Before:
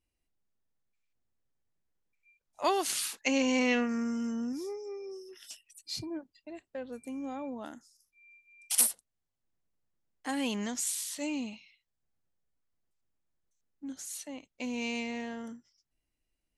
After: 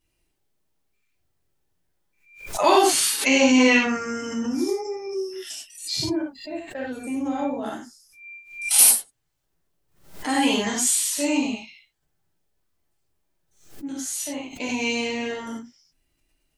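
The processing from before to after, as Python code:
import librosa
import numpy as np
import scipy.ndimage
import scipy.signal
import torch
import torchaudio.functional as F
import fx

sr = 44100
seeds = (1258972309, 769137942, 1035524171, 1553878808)

y = fx.spec_quant(x, sr, step_db=15)
y = fx.rev_gated(y, sr, seeds[0], gate_ms=120, shape='flat', drr_db=-4.5)
y = fx.pre_swell(y, sr, db_per_s=110.0)
y = F.gain(torch.from_numpy(y), 7.0).numpy()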